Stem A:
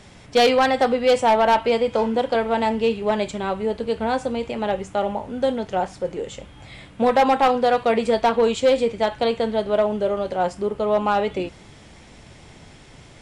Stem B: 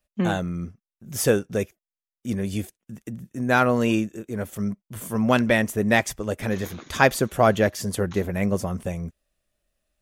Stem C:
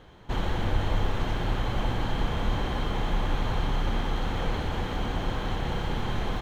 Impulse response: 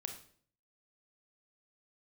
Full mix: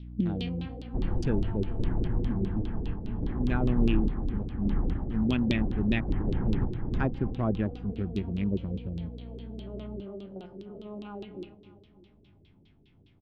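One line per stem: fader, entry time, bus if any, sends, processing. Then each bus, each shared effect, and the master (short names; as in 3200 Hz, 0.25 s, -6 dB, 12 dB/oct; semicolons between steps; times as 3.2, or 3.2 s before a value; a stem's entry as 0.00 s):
-3.5 dB, 0.00 s, no send, echo send -13.5 dB, stepped spectrum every 0.1 s; LPF 3800 Hz 12 dB/oct; resonator 97 Hz, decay 1.1 s, harmonics all, mix 70%; auto duck -8 dB, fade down 1.05 s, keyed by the second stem
-4.5 dB, 0.00 s, no send, no echo send, Wiener smoothing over 41 samples; treble ducked by the level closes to 2900 Hz, closed at -16 dBFS; hum 60 Hz, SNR 12 dB
+3.0 dB, 0.65 s, no send, echo send -6 dB, random-step tremolo, depth 80%; Chebyshev low-pass 1900 Hz, order 4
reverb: off
echo: feedback echo 0.299 s, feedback 48%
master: LFO low-pass saw down 4.9 Hz 350–3800 Hz; band shelf 990 Hz -16 dB 2.5 oct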